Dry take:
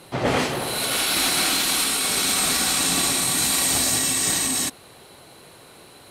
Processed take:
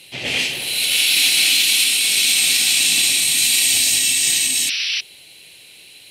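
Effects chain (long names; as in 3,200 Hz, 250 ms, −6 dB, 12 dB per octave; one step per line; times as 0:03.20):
sound drawn into the spectrogram noise, 0:04.68–0:05.01, 1,100–6,000 Hz −29 dBFS
high shelf with overshoot 1,800 Hz +13 dB, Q 3
level −9 dB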